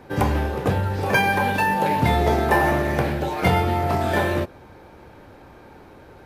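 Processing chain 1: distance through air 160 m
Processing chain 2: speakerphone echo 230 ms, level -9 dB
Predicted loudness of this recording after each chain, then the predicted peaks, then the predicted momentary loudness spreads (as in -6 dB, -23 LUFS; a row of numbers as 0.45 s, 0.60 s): -22.0 LUFS, -21.0 LUFS; -5.5 dBFS, -4.5 dBFS; 5 LU, 5 LU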